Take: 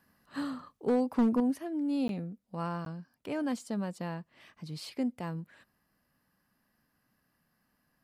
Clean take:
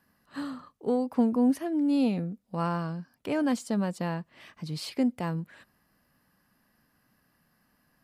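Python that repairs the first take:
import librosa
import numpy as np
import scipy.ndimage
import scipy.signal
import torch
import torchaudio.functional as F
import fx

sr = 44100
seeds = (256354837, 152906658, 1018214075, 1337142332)

y = fx.fix_declip(x, sr, threshold_db=-21.0)
y = fx.fix_interpolate(y, sr, at_s=(2.08, 2.85), length_ms=12.0)
y = fx.fix_level(y, sr, at_s=1.4, step_db=6.0)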